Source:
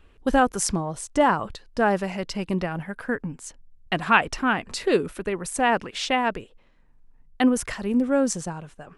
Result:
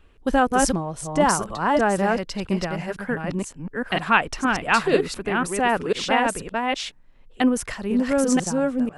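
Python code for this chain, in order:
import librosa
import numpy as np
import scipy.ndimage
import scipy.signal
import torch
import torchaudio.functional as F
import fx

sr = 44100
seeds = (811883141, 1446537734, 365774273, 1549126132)

y = fx.reverse_delay(x, sr, ms=494, wet_db=-1.5)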